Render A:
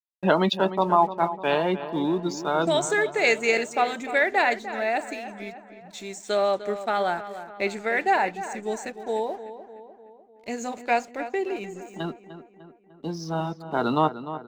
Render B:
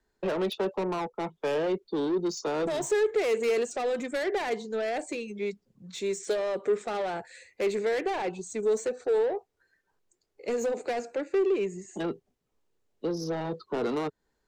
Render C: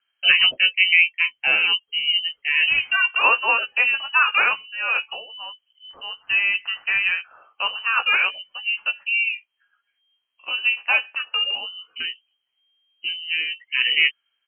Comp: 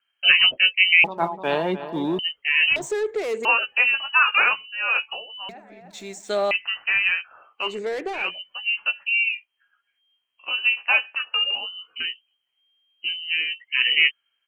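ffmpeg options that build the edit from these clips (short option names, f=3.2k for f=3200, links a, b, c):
-filter_complex "[0:a]asplit=2[a][b];[1:a]asplit=2[c][d];[2:a]asplit=5[e][f][g][h][i];[e]atrim=end=1.042[j];[a]atrim=start=1.038:end=2.192[k];[f]atrim=start=2.188:end=2.762[l];[c]atrim=start=2.758:end=3.452[m];[g]atrim=start=3.448:end=5.492[n];[b]atrim=start=5.488:end=6.512[o];[h]atrim=start=6.508:end=7.8[p];[d]atrim=start=7.56:end=8.36[q];[i]atrim=start=8.12[r];[j][k]acrossfade=d=0.004:c1=hsin:c2=hsin[s];[s][l]acrossfade=d=0.004:c1=hsin:c2=hsin[t];[t][m]acrossfade=d=0.004:c1=hsin:c2=hsin[u];[u][n]acrossfade=d=0.004:c1=hsin:c2=hsin[v];[v][o]acrossfade=d=0.004:c1=hsin:c2=hsin[w];[w][p]acrossfade=d=0.004:c1=hsin:c2=hsin[x];[x][q]acrossfade=d=0.24:c1=tri:c2=tri[y];[y][r]acrossfade=d=0.24:c1=tri:c2=tri"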